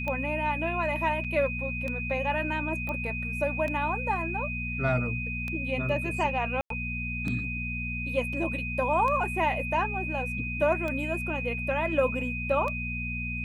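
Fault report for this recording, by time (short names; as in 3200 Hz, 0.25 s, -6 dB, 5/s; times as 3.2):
hum 60 Hz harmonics 4 -35 dBFS
tick 33 1/3 rpm -20 dBFS
tone 2500 Hz -33 dBFS
1.24–1.25 gap 6.2 ms
2.89 pop -21 dBFS
6.61–6.7 gap 93 ms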